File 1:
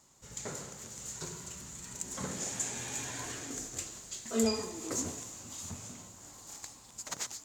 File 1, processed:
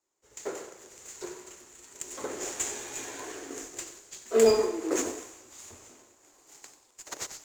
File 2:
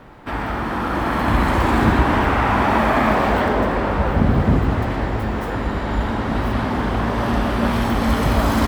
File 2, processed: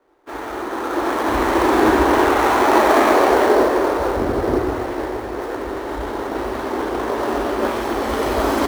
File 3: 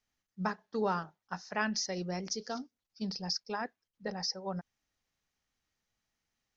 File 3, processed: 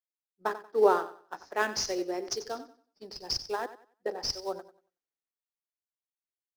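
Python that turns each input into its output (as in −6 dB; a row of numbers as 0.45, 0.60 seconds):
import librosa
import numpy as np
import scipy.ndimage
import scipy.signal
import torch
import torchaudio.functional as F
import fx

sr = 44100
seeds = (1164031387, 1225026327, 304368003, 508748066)

p1 = fx.low_shelf_res(x, sr, hz=250.0, db=-12.0, q=3.0)
p2 = fx.echo_feedback(p1, sr, ms=93, feedback_pct=37, wet_db=-12)
p3 = fx.sample_hold(p2, sr, seeds[0], rate_hz=5000.0, jitter_pct=20)
p4 = p2 + (p3 * librosa.db_to_amplitude(-8.0))
p5 = fx.band_widen(p4, sr, depth_pct=70)
y = p5 * librosa.db_to_amplitude(-1.5)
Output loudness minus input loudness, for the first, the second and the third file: +7.0, +1.0, +5.0 LU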